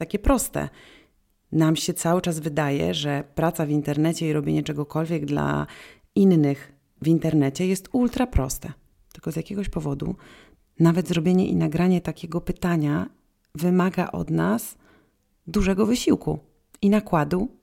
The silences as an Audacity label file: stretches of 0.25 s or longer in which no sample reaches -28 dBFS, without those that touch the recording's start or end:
0.670000	1.530000	silence
5.640000	6.170000	silence
6.540000	7.020000	silence
8.700000	9.150000	silence
10.130000	10.800000	silence
13.060000	13.550000	silence
14.700000	15.480000	silence
16.350000	16.750000	silence